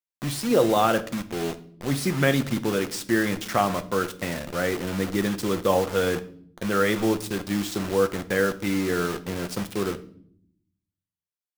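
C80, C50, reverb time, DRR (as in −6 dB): 20.0 dB, 16.5 dB, 0.60 s, 9.0 dB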